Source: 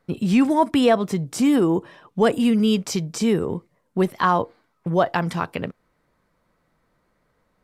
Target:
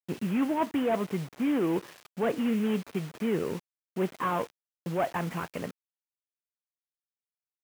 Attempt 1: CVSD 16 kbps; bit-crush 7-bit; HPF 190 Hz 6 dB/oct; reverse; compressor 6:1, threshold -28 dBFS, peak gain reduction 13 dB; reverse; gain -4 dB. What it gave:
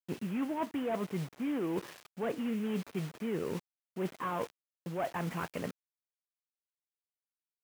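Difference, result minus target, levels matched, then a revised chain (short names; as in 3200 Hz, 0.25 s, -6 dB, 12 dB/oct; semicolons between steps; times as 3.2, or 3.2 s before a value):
compressor: peak gain reduction +7 dB
CVSD 16 kbps; bit-crush 7-bit; HPF 190 Hz 6 dB/oct; reverse; compressor 6:1, threshold -19.5 dBFS, peak gain reduction 6 dB; reverse; gain -4 dB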